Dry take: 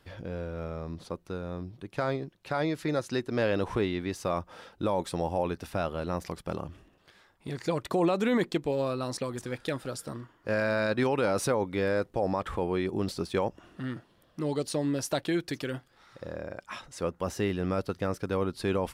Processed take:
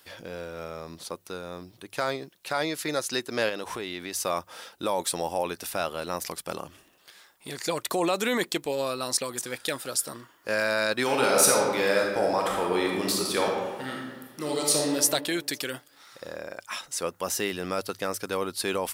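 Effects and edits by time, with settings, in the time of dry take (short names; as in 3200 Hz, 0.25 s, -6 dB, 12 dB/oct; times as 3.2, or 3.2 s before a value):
3.49–4.23 compressor 3:1, threshold -31 dBFS
11.02–14.94 reverb throw, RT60 1.4 s, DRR -1.5 dB
whole clip: RIAA curve recording; notches 50/100 Hz; gain +3 dB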